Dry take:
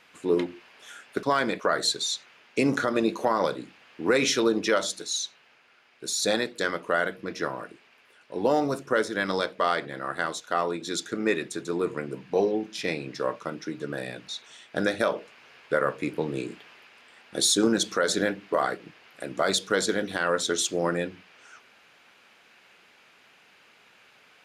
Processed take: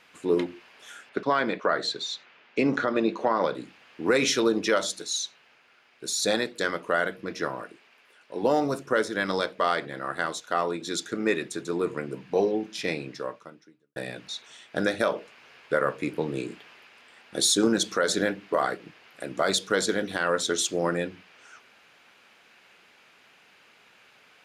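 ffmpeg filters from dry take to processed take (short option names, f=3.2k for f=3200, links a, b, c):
-filter_complex "[0:a]asettb=1/sr,asplit=3[a][b][c];[a]atrim=end=1.094[d];[b]atrim=start=1.09:end=3.55,asetpts=PTS-STARTPTS,afade=t=in:d=0.004:c=qsin,afade=t=out:st=2.456:d=0.004:c=qsin,highpass=130,lowpass=3.8k[e];[c]atrim=start=3.546[f];[d][e]acrossfade=d=0.004:c1=hsin:c2=qsin[g];[g][f]acrossfade=d=0.004:c1=qsin:c2=hsin,asettb=1/sr,asplit=3[h][i][j];[h]atrim=end=7.624[k];[i]atrim=start=7.62:end=8.43,asetpts=PTS-STARTPTS,afade=t=in:d=0.004:c=qsin,afade=t=out:st=0.806:d=0.004:c=qsin,lowshelf=f=120:g=-11[l];[j]atrim=start=8.426[m];[k][l]acrossfade=d=0.004:c1=hsin:c2=qsin[n];[n][m]acrossfade=d=0.004:c1=qsin:c2=hsin,asplit=2[o][p];[o]atrim=end=13.96,asetpts=PTS-STARTPTS,afade=t=out:st=13:d=0.96:c=qua[q];[p]atrim=start=13.96,asetpts=PTS-STARTPTS,afade=t=in:d=0.004:c=hsin[r];[q][r]concat=n=2:v=0:a=1"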